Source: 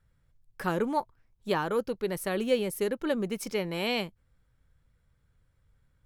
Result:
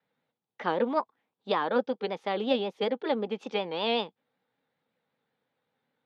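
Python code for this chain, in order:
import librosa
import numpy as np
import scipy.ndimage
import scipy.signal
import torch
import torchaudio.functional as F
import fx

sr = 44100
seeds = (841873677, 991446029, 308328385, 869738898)

y = fx.vibrato(x, sr, rate_hz=5.3, depth_cents=93.0)
y = fx.cabinet(y, sr, low_hz=200.0, low_slope=24, high_hz=3900.0, hz=(250.0, 470.0, 810.0, 3100.0), db=(6, 7, 10, 7))
y = fx.formant_shift(y, sr, semitones=2)
y = y * 10.0 ** (-3.0 / 20.0)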